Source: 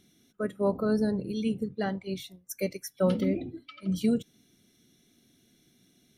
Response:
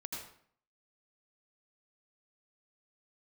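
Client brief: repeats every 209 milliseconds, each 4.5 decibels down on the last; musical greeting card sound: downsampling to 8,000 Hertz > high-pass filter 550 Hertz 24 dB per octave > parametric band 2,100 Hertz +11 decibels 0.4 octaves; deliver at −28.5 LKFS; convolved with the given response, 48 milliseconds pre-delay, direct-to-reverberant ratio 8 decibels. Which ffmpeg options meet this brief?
-filter_complex "[0:a]aecho=1:1:209|418|627|836|1045|1254|1463|1672|1881:0.596|0.357|0.214|0.129|0.0772|0.0463|0.0278|0.0167|0.01,asplit=2[link_01][link_02];[1:a]atrim=start_sample=2205,adelay=48[link_03];[link_02][link_03]afir=irnorm=-1:irlink=0,volume=-7dB[link_04];[link_01][link_04]amix=inputs=2:normalize=0,aresample=8000,aresample=44100,highpass=frequency=550:width=0.5412,highpass=frequency=550:width=1.3066,equalizer=frequency=2100:width_type=o:width=0.4:gain=11,volume=7dB"

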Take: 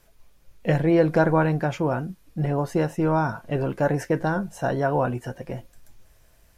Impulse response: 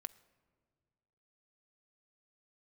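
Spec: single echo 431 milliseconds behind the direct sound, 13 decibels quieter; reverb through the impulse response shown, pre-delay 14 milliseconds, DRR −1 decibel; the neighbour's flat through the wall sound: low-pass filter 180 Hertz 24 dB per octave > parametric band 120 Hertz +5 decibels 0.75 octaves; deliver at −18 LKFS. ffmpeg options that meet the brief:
-filter_complex "[0:a]aecho=1:1:431:0.224,asplit=2[link_01][link_02];[1:a]atrim=start_sample=2205,adelay=14[link_03];[link_02][link_03]afir=irnorm=-1:irlink=0,volume=5dB[link_04];[link_01][link_04]amix=inputs=2:normalize=0,lowpass=frequency=180:width=0.5412,lowpass=frequency=180:width=1.3066,equalizer=frequency=120:width_type=o:width=0.75:gain=5,volume=4.5dB"

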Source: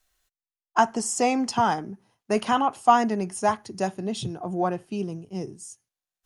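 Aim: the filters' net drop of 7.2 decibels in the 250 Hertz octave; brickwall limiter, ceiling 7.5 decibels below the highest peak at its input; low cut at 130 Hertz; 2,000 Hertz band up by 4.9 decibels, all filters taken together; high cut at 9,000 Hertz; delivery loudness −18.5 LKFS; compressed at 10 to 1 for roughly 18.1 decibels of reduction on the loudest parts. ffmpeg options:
ffmpeg -i in.wav -af "highpass=130,lowpass=9000,equalizer=frequency=250:width_type=o:gain=-8.5,equalizer=frequency=2000:width_type=o:gain=7,acompressor=threshold=-31dB:ratio=10,volume=20dB,alimiter=limit=-6.5dB:level=0:latency=1" out.wav

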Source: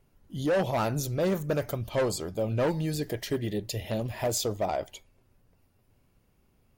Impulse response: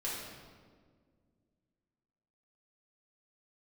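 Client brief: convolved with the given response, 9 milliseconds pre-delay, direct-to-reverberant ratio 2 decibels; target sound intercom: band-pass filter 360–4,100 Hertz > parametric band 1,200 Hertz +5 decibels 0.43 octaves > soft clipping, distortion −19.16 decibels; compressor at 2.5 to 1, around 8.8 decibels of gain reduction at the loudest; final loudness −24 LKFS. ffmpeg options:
-filter_complex "[0:a]acompressor=threshold=-37dB:ratio=2.5,asplit=2[link_01][link_02];[1:a]atrim=start_sample=2205,adelay=9[link_03];[link_02][link_03]afir=irnorm=-1:irlink=0,volume=-5.5dB[link_04];[link_01][link_04]amix=inputs=2:normalize=0,highpass=360,lowpass=4100,equalizer=frequency=1200:width_type=o:width=0.43:gain=5,asoftclip=threshold=-27dB,volume=15dB"

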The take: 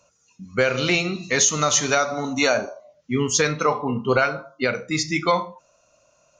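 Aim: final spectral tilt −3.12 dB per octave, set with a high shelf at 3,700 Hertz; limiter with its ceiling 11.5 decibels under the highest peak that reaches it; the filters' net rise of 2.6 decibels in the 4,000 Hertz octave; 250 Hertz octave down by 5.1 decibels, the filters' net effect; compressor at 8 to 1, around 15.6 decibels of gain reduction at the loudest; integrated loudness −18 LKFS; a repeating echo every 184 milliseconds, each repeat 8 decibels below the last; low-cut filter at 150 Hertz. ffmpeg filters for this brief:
ffmpeg -i in.wav -af "highpass=150,equalizer=frequency=250:width_type=o:gain=-6,highshelf=frequency=3700:gain=-8.5,equalizer=frequency=4000:width_type=o:gain=8.5,acompressor=threshold=-32dB:ratio=8,alimiter=level_in=4.5dB:limit=-24dB:level=0:latency=1,volume=-4.5dB,aecho=1:1:184|368|552|736|920:0.398|0.159|0.0637|0.0255|0.0102,volume=20.5dB" out.wav

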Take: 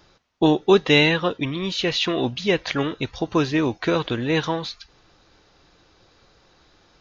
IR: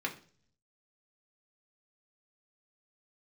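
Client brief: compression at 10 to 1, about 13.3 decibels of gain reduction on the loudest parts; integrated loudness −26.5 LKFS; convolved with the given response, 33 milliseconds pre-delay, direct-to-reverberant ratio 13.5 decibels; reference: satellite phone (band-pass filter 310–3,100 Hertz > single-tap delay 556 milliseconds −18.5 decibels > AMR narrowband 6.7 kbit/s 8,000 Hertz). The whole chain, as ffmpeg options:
-filter_complex "[0:a]acompressor=threshold=-25dB:ratio=10,asplit=2[link_01][link_02];[1:a]atrim=start_sample=2205,adelay=33[link_03];[link_02][link_03]afir=irnorm=-1:irlink=0,volume=-18dB[link_04];[link_01][link_04]amix=inputs=2:normalize=0,highpass=310,lowpass=3100,aecho=1:1:556:0.119,volume=7.5dB" -ar 8000 -c:a libopencore_amrnb -b:a 6700

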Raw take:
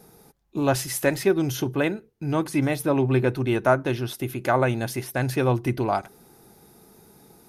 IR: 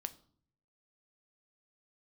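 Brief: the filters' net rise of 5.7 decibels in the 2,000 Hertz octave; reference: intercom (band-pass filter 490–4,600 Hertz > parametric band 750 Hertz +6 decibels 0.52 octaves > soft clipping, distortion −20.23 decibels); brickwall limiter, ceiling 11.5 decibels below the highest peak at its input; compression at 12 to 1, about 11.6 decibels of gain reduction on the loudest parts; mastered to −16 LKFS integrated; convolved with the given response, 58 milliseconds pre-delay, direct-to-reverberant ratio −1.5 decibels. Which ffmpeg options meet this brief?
-filter_complex "[0:a]equalizer=frequency=2000:width_type=o:gain=7.5,acompressor=threshold=-25dB:ratio=12,alimiter=level_in=1dB:limit=-24dB:level=0:latency=1,volume=-1dB,asplit=2[link_01][link_02];[1:a]atrim=start_sample=2205,adelay=58[link_03];[link_02][link_03]afir=irnorm=-1:irlink=0,volume=3.5dB[link_04];[link_01][link_04]amix=inputs=2:normalize=0,highpass=490,lowpass=4600,equalizer=frequency=750:width_type=o:width=0.52:gain=6,asoftclip=threshold=-23.5dB,volume=19.5dB"

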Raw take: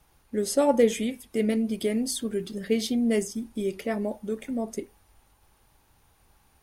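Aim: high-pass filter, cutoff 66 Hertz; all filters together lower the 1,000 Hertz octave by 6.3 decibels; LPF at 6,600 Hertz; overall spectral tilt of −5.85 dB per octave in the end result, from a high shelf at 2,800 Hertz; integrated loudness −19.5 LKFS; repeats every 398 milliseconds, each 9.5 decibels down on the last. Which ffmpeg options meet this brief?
ffmpeg -i in.wav -af "highpass=66,lowpass=6600,equalizer=frequency=1000:width_type=o:gain=-7.5,highshelf=frequency=2800:gain=-6.5,aecho=1:1:398|796|1194|1592:0.335|0.111|0.0365|0.012,volume=8.5dB" out.wav

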